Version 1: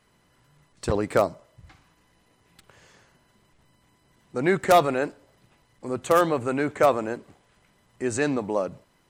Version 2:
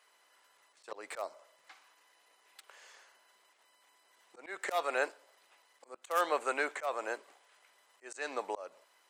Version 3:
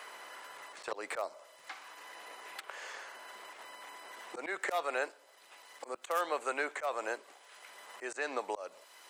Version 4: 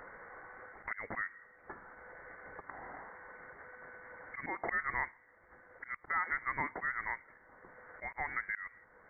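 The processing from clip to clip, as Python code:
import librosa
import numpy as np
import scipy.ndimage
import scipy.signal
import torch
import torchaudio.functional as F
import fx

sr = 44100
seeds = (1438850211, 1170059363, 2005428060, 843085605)

y1 = scipy.signal.sosfilt(scipy.signal.bessel(4, 730.0, 'highpass', norm='mag', fs=sr, output='sos'), x)
y1 = fx.auto_swell(y1, sr, attack_ms=288.0)
y2 = fx.band_squash(y1, sr, depth_pct=70)
y2 = y2 * librosa.db_to_amplitude(1.5)
y3 = fx.freq_invert(y2, sr, carrier_hz=2500)
y3 = y3 * librosa.db_to_amplitude(-1.5)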